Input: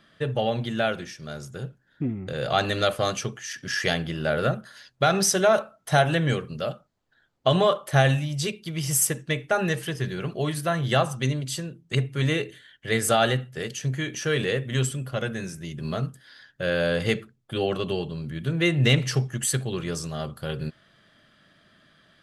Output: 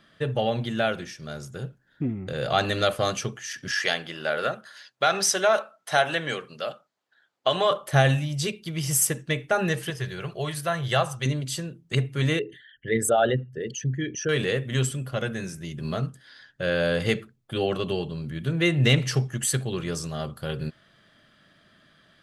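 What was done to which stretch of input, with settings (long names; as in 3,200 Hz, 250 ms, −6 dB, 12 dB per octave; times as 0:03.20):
0:03.71–0:07.71: meter weighting curve A
0:09.90–0:11.26: parametric band 250 Hz −14.5 dB
0:12.39–0:14.29: spectral envelope exaggerated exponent 2
0:15.99–0:16.84: low-pass filter 9,900 Hz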